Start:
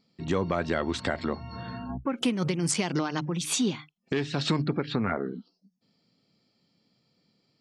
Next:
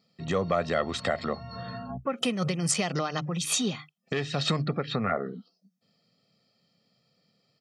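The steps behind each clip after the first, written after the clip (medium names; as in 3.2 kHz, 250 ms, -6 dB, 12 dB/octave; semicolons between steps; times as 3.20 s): high-pass 120 Hz; comb 1.6 ms, depth 60%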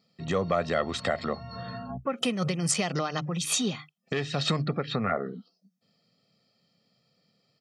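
no audible change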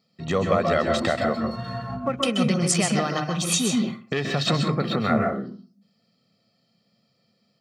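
in parallel at -5.5 dB: crossover distortion -47 dBFS; on the sum: reverberation RT60 0.35 s, pre-delay 127 ms, DRR 3 dB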